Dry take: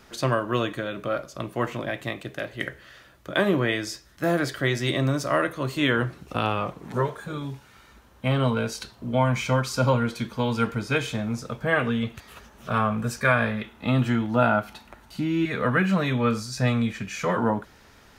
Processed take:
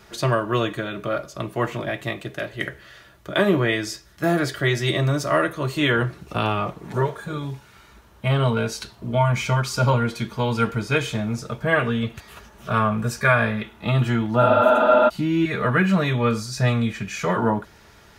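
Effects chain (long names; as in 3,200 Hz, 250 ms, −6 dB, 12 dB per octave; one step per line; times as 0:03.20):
notch comb filter 260 Hz
healed spectral selection 0:14.45–0:15.06, 200–5,900 Hz before
level +4 dB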